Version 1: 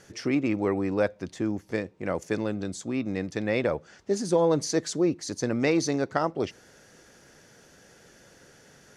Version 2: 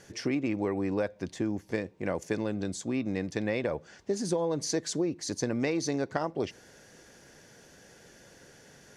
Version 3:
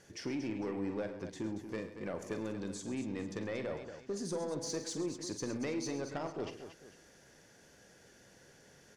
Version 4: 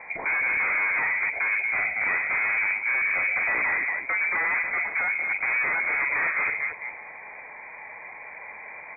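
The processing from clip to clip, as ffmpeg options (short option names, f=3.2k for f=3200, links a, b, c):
-af "bandreject=f=1.3k:w=9.9,acompressor=threshold=-25dB:ratio=10"
-filter_complex "[0:a]asoftclip=type=tanh:threshold=-22.5dB,asplit=2[a][b];[b]aecho=0:1:45|106|133|232|450:0.316|0.188|0.178|0.316|0.126[c];[a][c]amix=inputs=2:normalize=0,volume=-7dB"
-filter_complex "[0:a]asplit=2[a][b];[b]aeval=exprs='0.0501*sin(PI/2*5.01*val(0)/0.0501)':c=same,volume=-7dB[c];[a][c]amix=inputs=2:normalize=0,lowpass=f=2.1k:t=q:w=0.5098,lowpass=f=2.1k:t=q:w=0.6013,lowpass=f=2.1k:t=q:w=0.9,lowpass=f=2.1k:t=q:w=2.563,afreqshift=-2500,volume=8dB"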